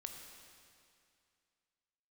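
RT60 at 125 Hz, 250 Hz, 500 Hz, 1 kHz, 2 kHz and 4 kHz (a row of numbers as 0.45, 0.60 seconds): 2.4, 2.4, 2.3, 2.4, 2.4, 2.3 seconds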